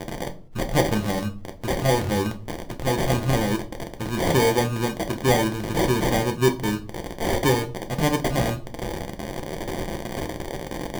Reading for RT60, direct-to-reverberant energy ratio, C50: 0.40 s, 5.0 dB, 15.0 dB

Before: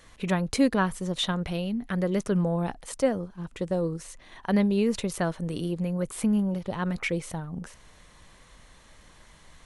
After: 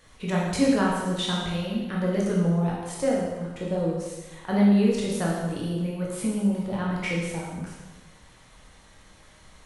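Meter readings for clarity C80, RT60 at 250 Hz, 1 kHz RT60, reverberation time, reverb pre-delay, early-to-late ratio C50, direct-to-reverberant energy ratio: 3.0 dB, 1.3 s, 1.2 s, 1.2 s, 7 ms, 0.5 dB, -4.0 dB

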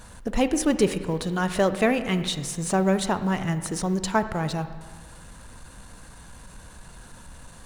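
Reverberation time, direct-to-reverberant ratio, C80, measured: 1.6 s, 11.0 dB, 12.5 dB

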